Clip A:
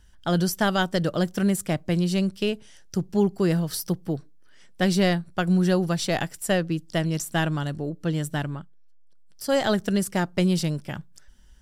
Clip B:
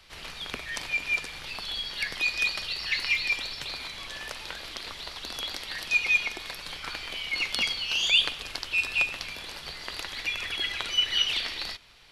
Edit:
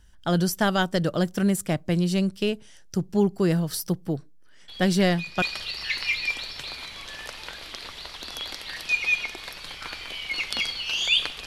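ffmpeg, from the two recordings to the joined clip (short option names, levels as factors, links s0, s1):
-filter_complex "[1:a]asplit=2[s0][s1];[0:a]apad=whole_dur=11.46,atrim=end=11.46,atrim=end=5.422[s2];[s1]atrim=start=2.438:end=8.48[s3];[s0]atrim=start=1.7:end=2.44,asetpts=PTS-STARTPTS,volume=0.316,afade=t=in:d=0.004:c=hsin,afade=t=out:st=0.736:d=0.004:c=hsin,adelay=4680[s4];[s2][s3]acrossfade=d=0.004:c1=hsin:c2=hsin[s5];[s5][s4]amix=inputs=2:normalize=0"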